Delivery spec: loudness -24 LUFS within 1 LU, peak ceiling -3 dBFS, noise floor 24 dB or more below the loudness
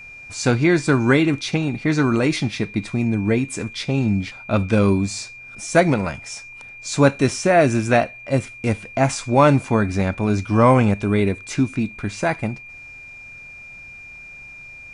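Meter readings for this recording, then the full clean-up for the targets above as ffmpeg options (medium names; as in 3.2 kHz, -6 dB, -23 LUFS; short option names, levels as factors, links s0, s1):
steady tone 2.4 kHz; tone level -37 dBFS; loudness -19.5 LUFS; peak level -2.0 dBFS; loudness target -24.0 LUFS
-> -af "bandreject=f=2400:w=30"
-af "volume=0.596"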